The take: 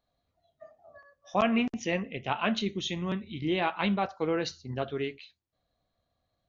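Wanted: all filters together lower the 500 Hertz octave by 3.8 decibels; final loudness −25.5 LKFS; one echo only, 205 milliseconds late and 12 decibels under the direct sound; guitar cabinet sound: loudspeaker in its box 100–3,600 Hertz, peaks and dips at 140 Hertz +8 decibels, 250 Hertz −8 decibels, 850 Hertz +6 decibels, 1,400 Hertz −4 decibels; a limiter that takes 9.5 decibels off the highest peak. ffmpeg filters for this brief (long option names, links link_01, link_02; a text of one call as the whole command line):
ffmpeg -i in.wav -af "equalizer=frequency=500:width_type=o:gain=-5.5,alimiter=limit=-24dB:level=0:latency=1,highpass=100,equalizer=frequency=140:width_type=q:width=4:gain=8,equalizer=frequency=250:width_type=q:width=4:gain=-8,equalizer=frequency=850:width_type=q:width=4:gain=6,equalizer=frequency=1400:width_type=q:width=4:gain=-4,lowpass=frequency=3600:width=0.5412,lowpass=frequency=3600:width=1.3066,aecho=1:1:205:0.251,volume=10dB" out.wav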